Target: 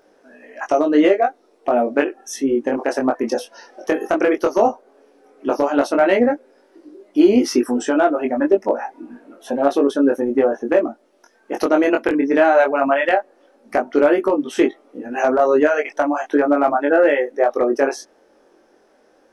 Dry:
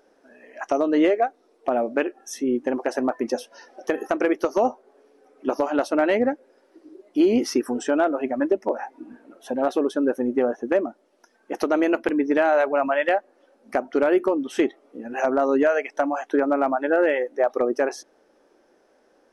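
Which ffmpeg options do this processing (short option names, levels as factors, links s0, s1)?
-af "flanger=delay=20:depth=2.5:speed=0.13,volume=2.51"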